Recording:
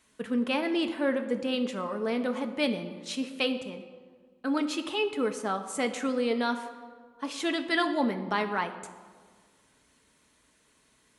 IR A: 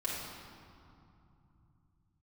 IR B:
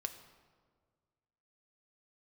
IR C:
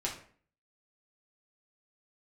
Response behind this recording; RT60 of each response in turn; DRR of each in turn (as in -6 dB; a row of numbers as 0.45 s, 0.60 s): B; 2.7 s, 1.7 s, 0.50 s; -7.5 dB, 6.0 dB, -3.5 dB